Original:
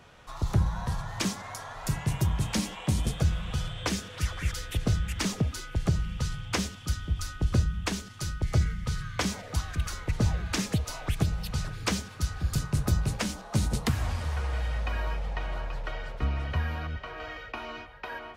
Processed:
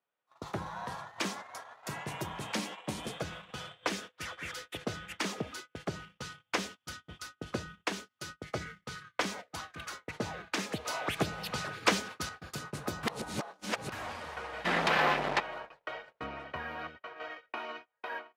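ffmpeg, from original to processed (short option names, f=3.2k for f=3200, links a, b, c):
-filter_complex "[0:a]asplit=3[a][b][c];[a]afade=t=out:st=14.64:d=0.02[d];[b]aeval=exprs='0.106*sin(PI/2*3.98*val(0)/0.106)':c=same,afade=t=in:st=14.64:d=0.02,afade=t=out:st=15.39:d=0.02[e];[c]afade=t=in:st=15.39:d=0.02[f];[d][e][f]amix=inputs=3:normalize=0,asettb=1/sr,asplit=3[g][h][i];[g]atrim=end=16.264[j];[h]atrim=start=16.26:end=16.79,asetpts=PTS-STARTPTS,afade=t=in:d=0.004:c=qsin,afade=t=out:st=0.526:d=0.004:c=qsin,highshelf=f=2.2k:g=-4[k];[i]atrim=start=16.786[l];[j][k]acrossfade=d=0.004:c1=hsin:c2=qsin[m];[m][l]acrossfade=d=0.004:c1=qsin:c2=hsin,asplit=5[n][o][p][q][r];[n]atrim=end=10.852[s];[o]atrim=start=10.848:end=12.292,asetpts=PTS-STARTPTS,volume=5.5dB[t];[p]atrim=start=12.288:end=13.032[u];[q]atrim=start=13.028:end=13.922,asetpts=PTS-STARTPTS,areverse[v];[r]atrim=start=13.918[w];[s][t]acrossfade=d=0.004:c1=hsin:c2=hsin[x];[x][u]acrossfade=d=0.004:c1=hsin:c2=hsin[y];[y][v]acrossfade=d=0.004:c1=hsin:c2=hsin[z];[z][w]acrossfade=d=0.004:c1=hsin:c2=hsin,highpass=170,agate=range=-33dB:threshold=-39dB:ratio=16:detection=peak,bass=f=250:g=-11,treble=f=4k:g=-8"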